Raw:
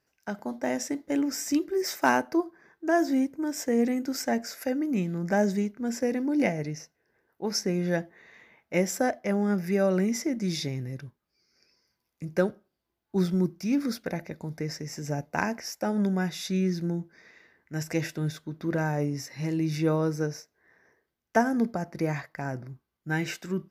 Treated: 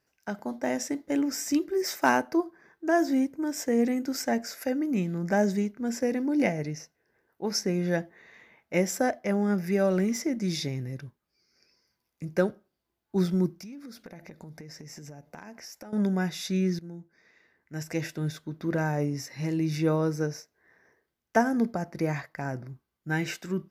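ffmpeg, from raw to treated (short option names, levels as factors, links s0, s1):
-filter_complex "[0:a]asettb=1/sr,asplit=3[s0][s1][s2];[s0]atrim=end=9.764[s3];[s1]atrim=start=9.76:end=10.2,asetpts=PTS-STARTPTS,afade=t=in:d=0.004:c=qsin,afade=t=out:st=0.436:d=0.004:c=qsin,aeval=exprs='sgn(val(0))*max(abs(val(0))-0.00299,0)':c=same[s4];[s2]atrim=start=10.196[s5];[s3][s4]acrossfade=d=0.004:c1=hsin:c2=qsin[s6];[s6][s5]acrossfade=d=0.004:c1=qsin:c2=hsin,asettb=1/sr,asplit=3[s7][s8][s9];[s7]atrim=end=13.544[s10];[s8]atrim=start=13.54:end=15.93,asetpts=PTS-STARTPTS,afade=t=in:d=0.004:c=qsin,afade=t=out:st=2.386:d=0.004:c=qsin,acompressor=threshold=0.01:ratio=12:attack=3.2:release=140:knee=1:detection=peak[s11];[s9]atrim=start=15.926[s12];[s10][s11]acrossfade=d=0.004:c1=hsin:c2=qsin[s13];[s13][s12]acrossfade=d=0.004:c1=qsin:c2=hsin,asplit=2[s14][s15];[s14]atrim=end=16.79,asetpts=PTS-STARTPTS,afade=t=out:st=16.786:d=0.004:c=hsin:silence=0.188365[s16];[s15]atrim=start=16.79,asetpts=PTS-STARTPTS,afade=t=in:d=1.66:silence=0.188365[s17];[s16][s17]concat=n=2:v=0:a=1"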